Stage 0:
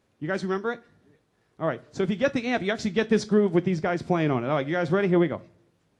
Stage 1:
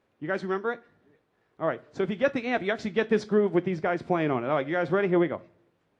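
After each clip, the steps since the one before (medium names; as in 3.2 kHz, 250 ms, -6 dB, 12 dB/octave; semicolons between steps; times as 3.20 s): tone controls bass -7 dB, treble -12 dB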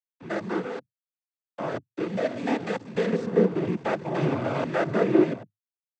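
spectrogram pixelated in time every 100 ms; hysteresis with a dead band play -30.5 dBFS; noise-vocoded speech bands 16; trim +4 dB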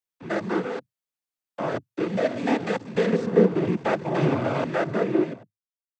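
fade out at the end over 1.62 s; trim +3 dB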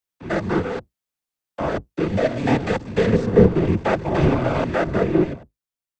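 octave divider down 1 oct, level -2 dB; trim +3.5 dB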